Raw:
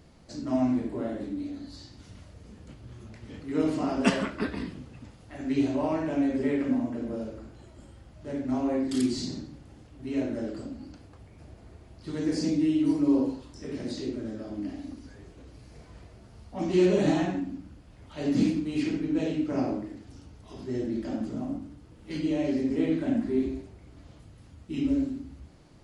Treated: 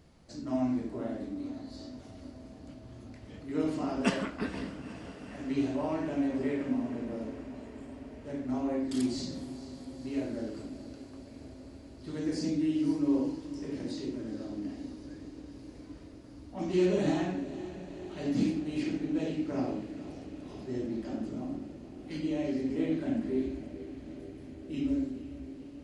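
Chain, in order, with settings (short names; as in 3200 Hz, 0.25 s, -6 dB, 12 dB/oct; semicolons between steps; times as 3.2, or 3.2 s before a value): diffused feedback echo 0.48 s, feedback 77%, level -14 dB; gain -4.5 dB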